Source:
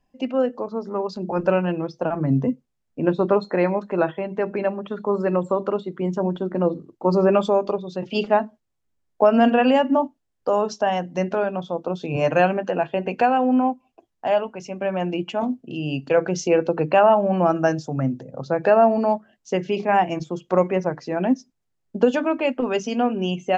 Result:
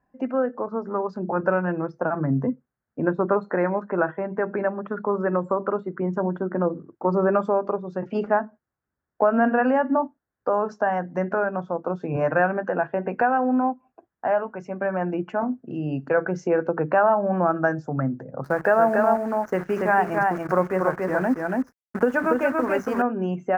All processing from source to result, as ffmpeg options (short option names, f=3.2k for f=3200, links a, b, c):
-filter_complex "[0:a]asettb=1/sr,asplit=3[a][b][c];[a]atrim=end=18.444[d];[b]atrim=start=18.44:end=23.02,asetpts=PTS-STARTPTS,afade=t=in:d=0.004:c=qsin,afade=t=out:st=4.576:d=0.004:c=qsin,highshelf=f=2.3k:g=6.5,acrusher=bits=6:dc=4:mix=0:aa=0.000001,aecho=1:1:283:0.668,atrim=end_sample=201978[e];[c]atrim=start=23.016[f];[d][e]acrossfade=d=0.004:c1=hsin:c2=qsin[g];[g][f]acrossfade=d=0.004:c1=qsin:c2=hsin,highpass=52,highshelf=f=2.3k:t=q:w=3:g=-13.5,acompressor=threshold=-24dB:ratio=1.5"